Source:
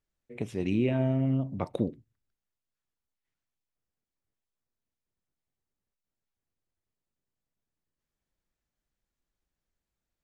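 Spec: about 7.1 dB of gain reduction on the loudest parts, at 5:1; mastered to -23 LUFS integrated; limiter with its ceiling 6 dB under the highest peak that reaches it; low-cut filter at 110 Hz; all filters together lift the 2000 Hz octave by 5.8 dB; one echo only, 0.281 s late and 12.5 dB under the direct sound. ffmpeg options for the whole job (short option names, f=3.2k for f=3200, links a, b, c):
-af "highpass=110,equalizer=f=2k:t=o:g=7.5,acompressor=threshold=-30dB:ratio=5,alimiter=level_in=1.5dB:limit=-24dB:level=0:latency=1,volume=-1.5dB,aecho=1:1:281:0.237,volume=14dB"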